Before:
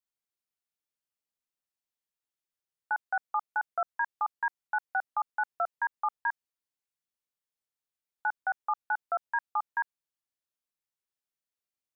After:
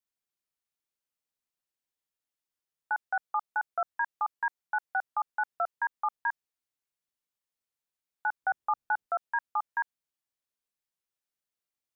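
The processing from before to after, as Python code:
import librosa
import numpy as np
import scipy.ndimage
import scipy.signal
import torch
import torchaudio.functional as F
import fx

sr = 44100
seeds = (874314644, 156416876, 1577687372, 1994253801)

y = fx.low_shelf(x, sr, hz=410.0, db=10.5, at=(8.42, 9.07))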